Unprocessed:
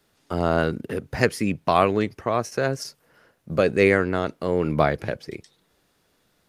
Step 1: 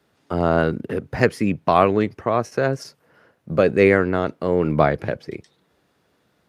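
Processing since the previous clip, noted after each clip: high-pass 69 Hz; treble shelf 3.6 kHz -10.5 dB; trim +3.5 dB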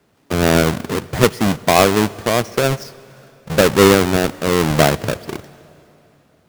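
square wave that keeps the level; on a send at -20 dB: reverberation RT60 3.1 s, pre-delay 62 ms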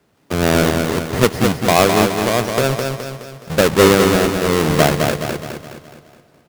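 feedback delay 210 ms, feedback 48%, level -5 dB; trim -1 dB

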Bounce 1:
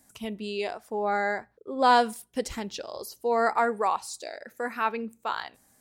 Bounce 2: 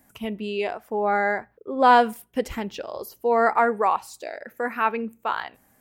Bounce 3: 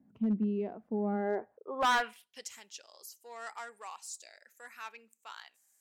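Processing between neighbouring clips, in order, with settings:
high-order bell 6.1 kHz -9.5 dB; trim +4.5 dB
in parallel at -8.5 dB: saturation -19.5 dBFS, distortion -8 dB; on the sum: band-pass sweep 210 Hz -> 7.1 kHz, 1.13–2.51 s; hard clipper -24 dBFS, distortion -7 dB

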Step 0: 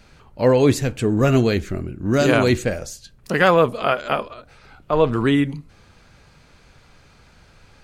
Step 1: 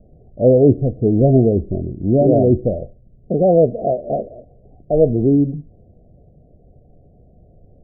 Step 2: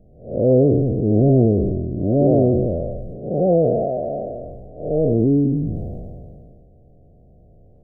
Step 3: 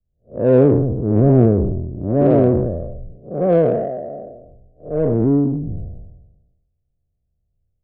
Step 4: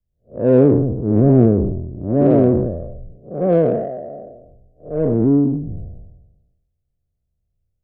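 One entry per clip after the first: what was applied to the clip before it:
Chebyshev low-pass 730 Hz, order 8; trim +4.5 dB
spectral blur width 225 ms; decay stretcher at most 26 dB/s
in parallel at -3 dB: saturation -16.5 dBFS, distortion -10 dB; on the sum: three bands expanded up and down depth 100%; trim -2.5 dB
dynamic bell 250 Hz, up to +4 dB, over -22 dBFS, Q 0.97; trim -2 dB

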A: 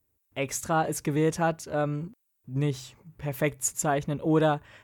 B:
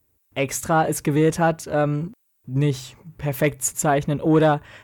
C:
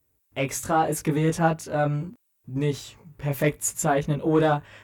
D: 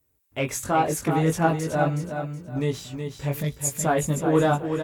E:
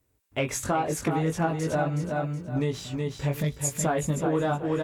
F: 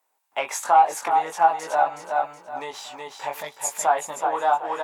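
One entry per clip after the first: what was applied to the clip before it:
dynamic bell 5.8 kHz, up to -4 dB, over -45 dBFS, Q 1.2; Chebyshev shaper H 5 -25 dB, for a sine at -11.5 dBFS; trim +5.5 dB
chorus 0.78 Hz, delay 18 ms, depth 3.8 ms
time-frequency box 3.41–3.72 s, 250–3200 Hz -12 dB; on a send: feedback delay 371 ms, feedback 28%, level -7 dB
treble shelf 11 kHz -11 dB; compression 6:1, threshold -25 dBFS, peak gain reduction 10 dB; trim +2.5 dB
resonant high-pass 840 Hz, resonance Q 4.9; trim +1.5 dB

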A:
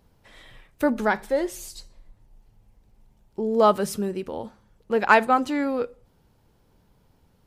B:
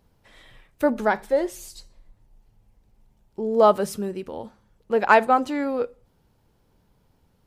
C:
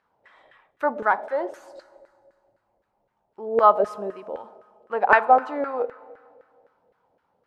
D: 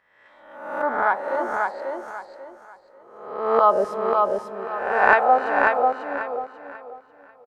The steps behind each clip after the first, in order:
dynamic bell 620 Hz, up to +5 dB, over -29 dBFS, Q 0.93; trim -2 dB
Schroeder reverb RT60 2.1 s, combs from 27 ms, DRR 16.5 dB; LFO band-pass saw down 3.9 Hz 520–1600 Hz; trim +7 dB
reverse spectral sustain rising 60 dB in 0.89 s; on a send: feedback delay 541 ms, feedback 28%, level -3.5 dB; on the sum: trim -2.5 dB

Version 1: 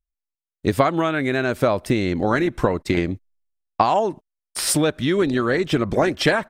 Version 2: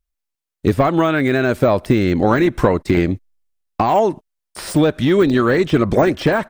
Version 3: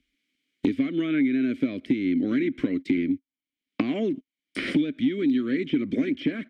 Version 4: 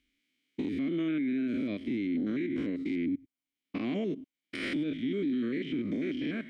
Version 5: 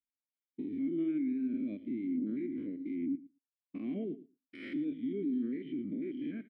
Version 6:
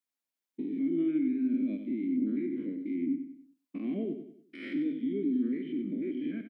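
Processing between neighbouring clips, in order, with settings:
in parallel at -9 dB: sine folder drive 6 dB, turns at -2.5 dBFS; on the sum: de-esser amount 70%
vowel filter i; three bands compressed up and down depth 100%
spectrogram pixelated in time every 100 ms; peak limiter -25 dBFS, peak gain reduction 9 dB
on a send: feedback delay 114 ms, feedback 18%, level -12 dB; on the sum: spectral contrast expander 1.5:1; trim -3.5 dB
high-pass 150 Hz 24 dB/octave; on a send: feedback delay 95 ms, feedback 41%, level -9.5 dB; on the sum: trim +3.5 dB

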